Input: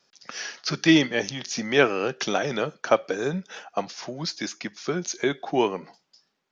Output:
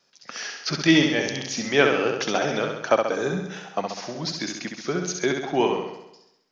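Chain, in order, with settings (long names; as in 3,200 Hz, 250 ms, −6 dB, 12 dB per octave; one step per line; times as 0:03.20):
flutter between parallel walls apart 11.4 metres, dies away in 0.84 s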